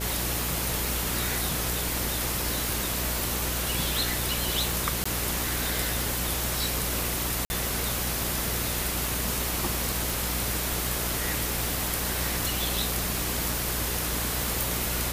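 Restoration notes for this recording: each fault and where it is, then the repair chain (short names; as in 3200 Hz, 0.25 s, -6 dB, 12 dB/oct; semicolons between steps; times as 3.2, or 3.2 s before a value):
buzz 60 Hz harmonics 10 -34 dBFS
tick 78 rpm
5.04–5.05 gap 15 ms
7.45–7.5 gap 50 ms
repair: de-click; de-hum 60 Hz, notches 10; interpolate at 5.04, 15 ms; interpolate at 7.45, 50 ms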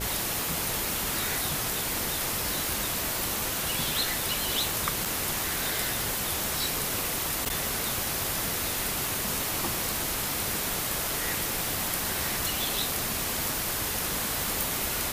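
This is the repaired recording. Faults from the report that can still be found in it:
none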